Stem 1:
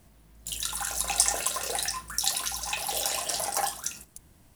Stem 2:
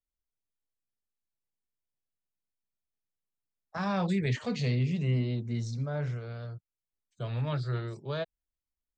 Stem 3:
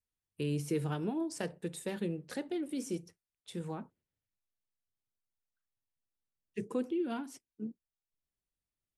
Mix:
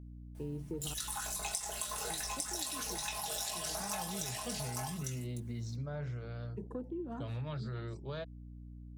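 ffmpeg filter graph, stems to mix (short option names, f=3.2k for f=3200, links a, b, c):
-filter_complex "[0:a]flanger=delay=17:depth=3.8:speed=0.44,tremolo=f=90:d=0.667,aecho=1:1:4.7:0.94,adelay=350,volume=1.5dB,asplit=2[a][b];[b]volume=-4dB[c];[1:a]alimiter=level_in=2dB:limit=-24dB:level=0:latency=1,volume=-2dB,aeval=exprs='val(0)+0.00631*(sin(2*PI*60*n/s)+sin(2*PI*2*60*n/s)/2+sin(2*PI*3*60*n/s)/3+sin(2*PI*4*60*n/s)/4+sin(2*PI*5*60*n/s)/5)':c=same,volume=-3.5dB[d];[2:a]afwtdn=0.00794,volume=-5dB,asplit=3[e][f][g];[e]atrim=end=0.94,asetpts=PTS-STARTPTS,afade=t=out:st=0.936:d=0.004:c=hsin[h];[f]atrim=start=0.94:end=2.1,asetpts=PTS-STARTPTS,volume=0[i];[g]atrim=start=2.1,asetpts=PTS-STARTPTS,afade=t=in:d=0.004:c=hsin[j];[h][i][j]concat=n=3:v=0:a=1[k];[c]aecho=0:1:852:1[l];[a][d][k][l]amix=inputs=4:normalize=0,acompressor=threshold=-36dB:ratio=5"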